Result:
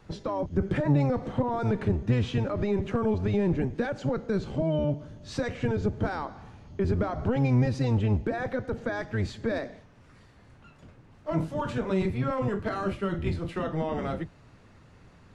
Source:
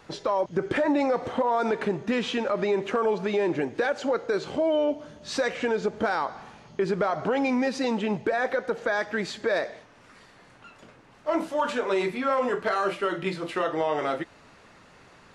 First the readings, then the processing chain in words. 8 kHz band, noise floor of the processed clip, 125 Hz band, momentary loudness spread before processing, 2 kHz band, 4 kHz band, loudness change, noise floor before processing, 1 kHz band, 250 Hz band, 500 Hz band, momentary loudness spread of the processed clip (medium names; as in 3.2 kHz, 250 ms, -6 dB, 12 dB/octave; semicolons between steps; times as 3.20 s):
no reading, -55 dBFS, +14.0 dB, 5 LU, -7.5 dB, -8.0 dB, -2.0 dB, -54 dBFS, -7.0 dB, +0.5 dB, -5.0 dB, 8 LU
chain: octave divider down 1 oct, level +4 dB; bass shelf 350 Hz +8.5 dB; trim -8 dB